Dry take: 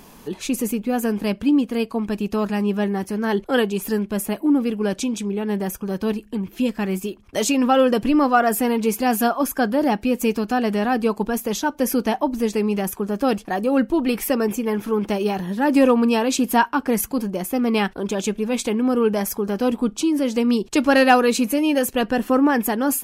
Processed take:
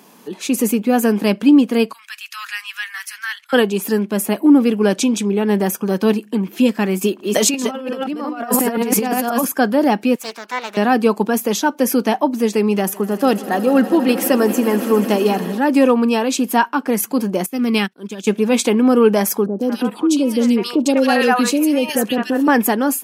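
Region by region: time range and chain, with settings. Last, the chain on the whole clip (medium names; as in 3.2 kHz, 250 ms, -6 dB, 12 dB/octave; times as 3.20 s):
1.93–3.53 s: inverse Chebyshev band-stop 120–590 Hz, stop band 60 dB + dynamic bell 1.2 kHz, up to +6 dB, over -48 dBFS, Q 0.74 + compression 1.5:1, threshold -37 dBFS
7.01–9.45 s: chunks repeated in reverse 176 ms, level -1 dB + compressor with a negative ratio -21 dBFS, ratio -0.5
10.15–10.77 s: high-pass 1.1 kHz + tilt EQ -2 dB/octave + loudspeaker Doppler distortion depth 0.53 ms
12.77–15.58 s: band-stop 2.3 kHz, Q 16 + echo with a slow build-up 80 ms, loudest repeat 5, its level -18 dB
17.46–18.27 s: peaking EQ 690 Hz -10.5 dB 2.2 oct + upward expansion 2.5:1, over -36 dBFS
19.46–22.48 s: three bands offset in time lows, highs, mids 130/200 ms, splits 690/2300 Hz + compression 1.5:1, threshold -30 dBFS
whole clip: high-pass 180 Hz 24 dB/octave; level rider; trim -1 dB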